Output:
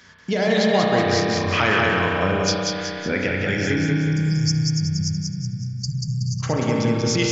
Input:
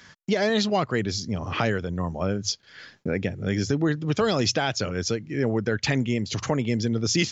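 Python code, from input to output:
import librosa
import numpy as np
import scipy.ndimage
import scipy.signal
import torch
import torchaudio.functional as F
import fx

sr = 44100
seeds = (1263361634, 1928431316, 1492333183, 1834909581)

y = fx.peak_eq(x, sr, hz=2200.0, db=8.0, octaves=2.0, at=(1.0, 3.57))
y = fx.spec_erase(y, sr, start_s=3.78, length_s=2.62, low_hz=200.0, high_hz=4500.0)
y = fx.echo_feedback(y, sr, ms=186, feedback_pct=47, wet_db=-3)
y = fx.rev_spring(y, sr, rt60_s=2.9, pass_ms=(32,), chirp_ms=45, drr_db=-1.0)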